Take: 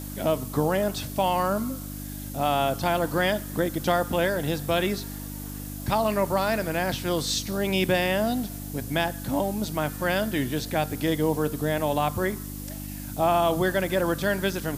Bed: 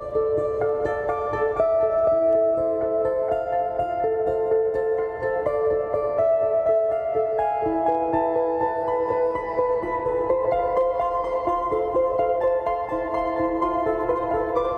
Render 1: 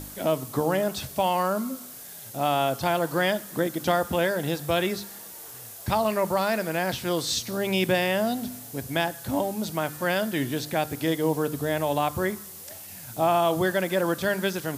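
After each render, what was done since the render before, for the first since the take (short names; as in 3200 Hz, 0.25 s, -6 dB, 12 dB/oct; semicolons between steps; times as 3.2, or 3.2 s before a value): de-hum 50 Hz, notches 6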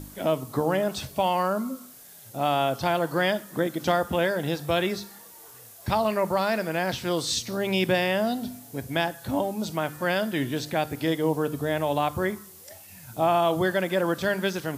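noise print and reduce 6 dB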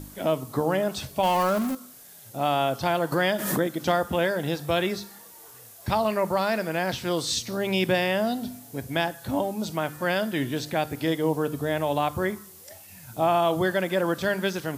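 1.23–1.75 zero-crossing step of -28 dBFS; 3.12–3.68 backwards sustainer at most 46 dB/s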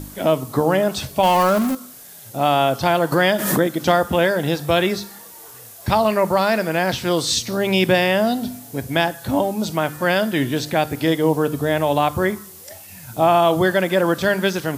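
gain +7 dB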